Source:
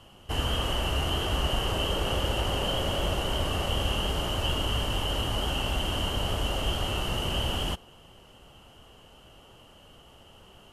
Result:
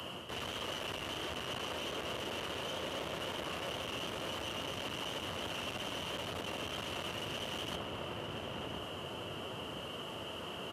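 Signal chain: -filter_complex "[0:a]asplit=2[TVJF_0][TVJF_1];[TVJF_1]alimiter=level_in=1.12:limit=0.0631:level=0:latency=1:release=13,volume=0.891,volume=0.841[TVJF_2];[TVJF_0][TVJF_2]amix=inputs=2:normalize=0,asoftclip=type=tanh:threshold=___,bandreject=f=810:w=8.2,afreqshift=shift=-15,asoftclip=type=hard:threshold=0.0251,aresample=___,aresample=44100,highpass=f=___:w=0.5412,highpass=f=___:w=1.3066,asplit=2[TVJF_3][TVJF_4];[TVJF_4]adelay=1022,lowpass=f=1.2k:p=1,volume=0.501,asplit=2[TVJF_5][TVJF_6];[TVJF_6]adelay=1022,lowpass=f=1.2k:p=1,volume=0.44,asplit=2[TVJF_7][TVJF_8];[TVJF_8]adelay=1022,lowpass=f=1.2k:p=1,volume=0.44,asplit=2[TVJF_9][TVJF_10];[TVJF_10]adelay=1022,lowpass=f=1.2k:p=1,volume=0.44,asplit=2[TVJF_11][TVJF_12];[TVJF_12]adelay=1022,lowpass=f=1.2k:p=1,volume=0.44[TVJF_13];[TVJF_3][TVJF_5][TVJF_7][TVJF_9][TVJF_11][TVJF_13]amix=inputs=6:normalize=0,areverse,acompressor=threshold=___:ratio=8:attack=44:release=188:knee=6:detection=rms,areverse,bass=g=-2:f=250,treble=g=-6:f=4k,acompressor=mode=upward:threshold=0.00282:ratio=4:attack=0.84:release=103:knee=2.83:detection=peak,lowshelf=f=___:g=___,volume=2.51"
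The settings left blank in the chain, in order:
0.0562, 32000, 82, 82, 0.00562, 140, -6.5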